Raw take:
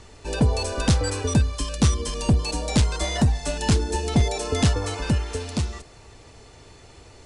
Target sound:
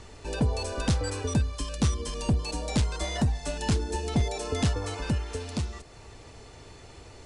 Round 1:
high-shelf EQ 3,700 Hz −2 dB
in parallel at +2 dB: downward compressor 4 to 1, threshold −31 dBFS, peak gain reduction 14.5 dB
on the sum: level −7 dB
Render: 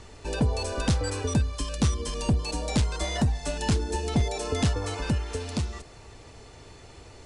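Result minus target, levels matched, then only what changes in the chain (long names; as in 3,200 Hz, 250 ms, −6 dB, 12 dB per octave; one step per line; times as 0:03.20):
downward compressor: peak gain reduction −6.5 dB
change: downward compressor 4 to 1, threshold −40 dBFS, peak gain reduction 21.5 dB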